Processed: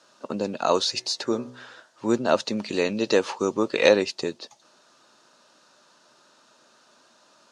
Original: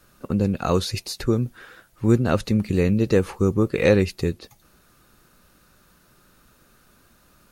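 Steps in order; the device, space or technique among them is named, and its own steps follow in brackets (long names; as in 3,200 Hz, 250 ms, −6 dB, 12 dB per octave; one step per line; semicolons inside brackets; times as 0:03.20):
0:00.82–0:02.07: hum removal 62.02 Hz, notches 35
0:02.57–0:03.89: parametric band 3,200 Hz +4.5 dB 2.3 octaves
television speaker (loudspeaker in its box 180–6,500 Hz, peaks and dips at 180 Hz −9 dB, 620 Hz +9 dB, 930 Hz +9 dB, 2,200 Hz −6 dB)
high-shelf EQ 2,400 Hz +11.5 dB
level −3.5 dB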